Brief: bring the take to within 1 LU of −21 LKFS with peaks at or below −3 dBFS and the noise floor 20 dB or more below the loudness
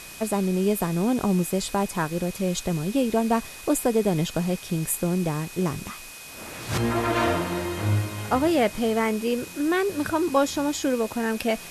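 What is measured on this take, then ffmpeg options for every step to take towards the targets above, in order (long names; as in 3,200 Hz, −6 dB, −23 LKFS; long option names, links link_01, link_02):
interfering tone 2,500 Hz; level of the tone −45 dBFS; background noise floor −41 dBFS; target noise floor −45 dBFS; integrated loudness −25.0 LKFS; sample peak −8.5 dBFS; target loudness −21.0 LKFS
→ -af "bandreject=frequency=2500:width=30"
-af "afftdn=noise_reduction=6:noise_floor=-41"
-af "volume=4dB"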